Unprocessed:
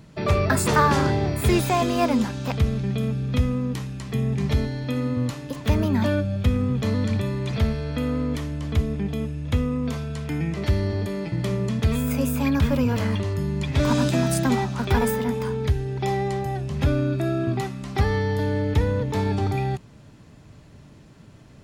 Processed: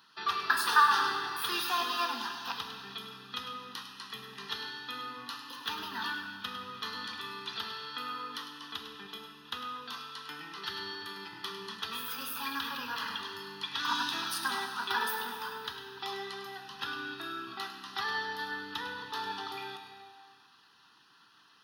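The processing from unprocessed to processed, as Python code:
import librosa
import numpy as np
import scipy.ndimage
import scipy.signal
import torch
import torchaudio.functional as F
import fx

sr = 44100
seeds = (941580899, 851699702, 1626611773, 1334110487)

p1 = 10.0 ** (-19.5 / 20.0) * np.tanh(x / 10.0 ** (-19.5 / 20.0))
p2 = x + (p1 * 10.0 ** (-9.0 / 20.0))
p3 = scipy.signal.sosfilt(scipy.signal.butter(2, 1100.0, 'highpass', fs=sr, output='sos'), p2)
p4 = fx.high_shelf(p3, sr, hz=9500.0, db=-6.5)
p5 = p4 + fx.echo_single(p4, sr, ms=102, db=-8.5, dry=0)
p6 = fx.dereverb_blind(p5, sr, rt60_s=0.52)
p7 = fx.fixed_phaser(p6, sr, hz=2200.0, stages=6)
y = fx.rev_plate(p7, sr, seeds[0], rt60_s=1.9, hf_ratio=0.9, predelay_ms=0, drr_db=3.5)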